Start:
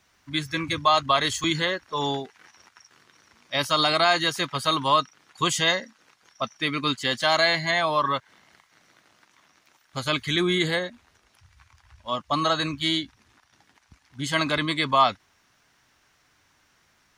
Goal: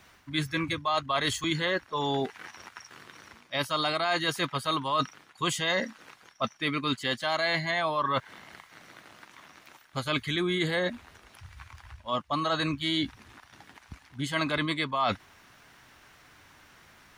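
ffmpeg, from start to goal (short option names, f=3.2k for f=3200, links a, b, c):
-af "equalizer=f=5.9k:t=o:w=1:g=-6,areverse,acompressor=threshold=-36dB:ratio=5,areverse,volume=9dB"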